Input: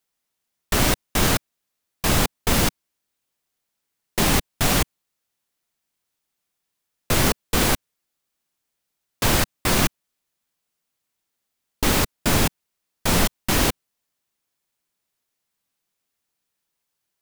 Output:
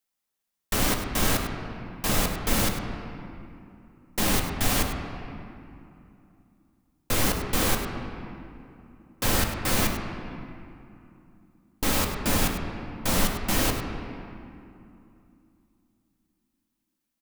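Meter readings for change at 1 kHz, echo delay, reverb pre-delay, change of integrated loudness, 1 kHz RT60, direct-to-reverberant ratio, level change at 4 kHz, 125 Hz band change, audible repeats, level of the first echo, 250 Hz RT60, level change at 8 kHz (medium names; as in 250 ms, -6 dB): -4.0 dB, 100 ms, 4 ms, -5.0 dB, 2.7 s, 1.5 dB, -5.0 dB, -5.0 dB, 1, -11.0 dB, 3.7 s, -4.0 dB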